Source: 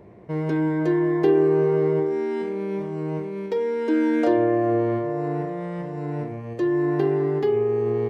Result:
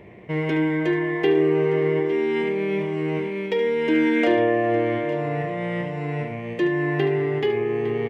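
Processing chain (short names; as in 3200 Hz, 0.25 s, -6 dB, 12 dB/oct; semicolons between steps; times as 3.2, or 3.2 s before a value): vocal rider within 3 dB 2 s; band shelf 2500 Hz +12 dB 1.1 oct; tapped delay 73/858 ms -10.5/-13 dB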